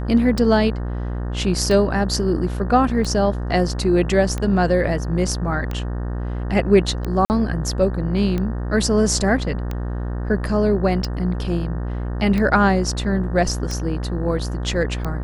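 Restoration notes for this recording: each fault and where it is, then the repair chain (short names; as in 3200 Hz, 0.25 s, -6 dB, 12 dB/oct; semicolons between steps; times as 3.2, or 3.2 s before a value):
buzz 60 Hz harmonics 31 -25 dBFS
tick 45 rpm
7.25–7.3 gap 49 ms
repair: de-click; de-hum 60 Hz, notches 31; interpolate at 7.25, 49 ms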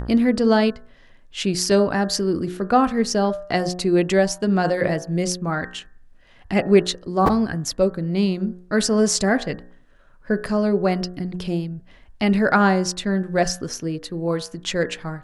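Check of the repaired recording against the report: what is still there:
none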